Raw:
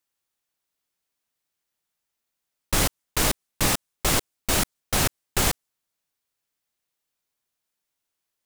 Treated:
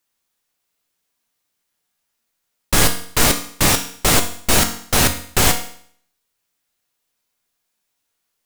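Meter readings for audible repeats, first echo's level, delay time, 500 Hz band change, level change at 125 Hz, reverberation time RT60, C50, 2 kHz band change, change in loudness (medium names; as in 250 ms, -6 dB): no echo, no echo, no echo, +7.0 dB, +6.5 dB, 0.55 s, 10.0 dB, +8.0 dB, +7.5 dB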